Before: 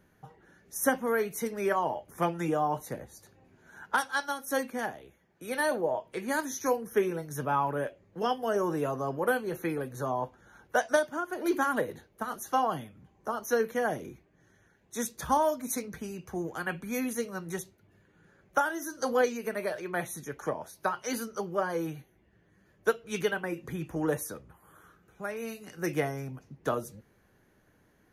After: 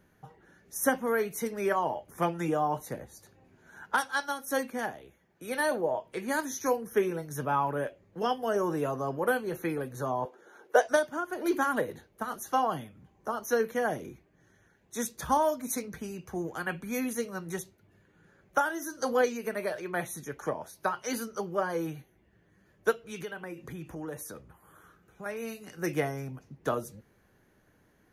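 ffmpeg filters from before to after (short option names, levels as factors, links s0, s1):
-filter_complex "[0:a]asettb=1/sr,asplit=3[s0][s1][s2];[s0]atrim=end=10.254[s3];[s1]atrim=start=10.25:end=10.87,asetpts=PTS-STARTPTS,afade=t=in:d=0.004:c=qsin,afade=t=out:st=0.616:d=0.004:c=qsin,highpass=f=400:t=q:w=3.4[s4];[s2]atrim=start=10.866[s5];[s3][s4]acrossfade=d=0.004:c1=hsin:c2=qsin[s6];[s6][s5]acrossfade=d=0.004:c1=qsin:c2=hsin,asettb=1/sr,asplit=3[s7][s8][s9];[s7]atrim=end=22.934[s10];[s8]atrim=start=22.93:end=25.26,asetpts=PTS-STARTPTS,afade=t=in:d=0.004:c=qsin,afade=t=out:st=2.326:d=0.004:c=qsin,acompressor=threshold=0.0112:ratio=2.5:attack=3.2:release=140:knee=1:detection=peak[s11];[s9]atrim=start=25.256[s12];[s10][s11]acrossfade=d=0.004:c1=hsin:c2=qsin[s13];[s13][s12]acrossfade=d=0.004:c1=qsin:c2=hsin"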